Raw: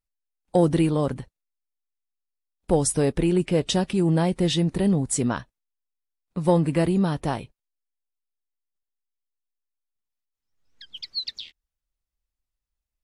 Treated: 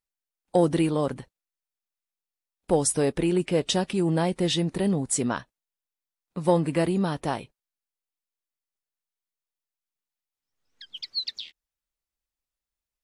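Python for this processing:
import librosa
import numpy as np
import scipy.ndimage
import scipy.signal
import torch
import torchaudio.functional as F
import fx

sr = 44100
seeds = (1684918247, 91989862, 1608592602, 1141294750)

y = fx.low_shelf(x, sr, hz=140.0, db=-11.0)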